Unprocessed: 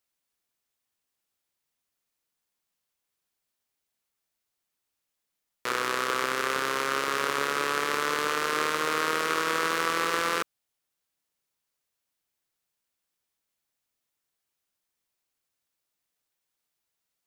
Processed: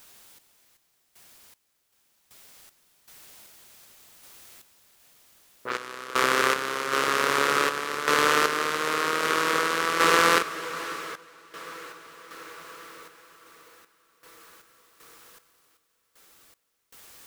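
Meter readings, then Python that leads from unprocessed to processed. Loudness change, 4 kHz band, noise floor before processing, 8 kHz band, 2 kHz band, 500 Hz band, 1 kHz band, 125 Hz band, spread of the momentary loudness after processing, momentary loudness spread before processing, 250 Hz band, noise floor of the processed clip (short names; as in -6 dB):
+3.5 dB, +4.0 dB, -83 dBFS, +4.0 dB, +4.0 dB, +4.0 dB, +3.5 dB, +4.0 dB, 22 LU, 3 LU, +3.5 dB, -73 dBFS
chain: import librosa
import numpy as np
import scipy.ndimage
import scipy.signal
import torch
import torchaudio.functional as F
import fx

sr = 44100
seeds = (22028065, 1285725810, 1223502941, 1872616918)

p1 = fx.env_lowpass(x, sr, base_hz=390.0, full_db=-24.0)
p2 = fx.quant_dither(p1, sr, seeds[0], bits=8, dither='triangular')
p3 = p1 + (p2 * 10.0 ** (-8.0 / 20.0))
p4 = fx.echo_diffused(p3, sr, ms=553, feedback_pct=68, wet_db=-11)
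p5 = fx.tremolo_random(p4, sr, seeds[1], hz=2.6, depth_pct=95)
y = p5 * 10.0 ** (5.5 / 20.0)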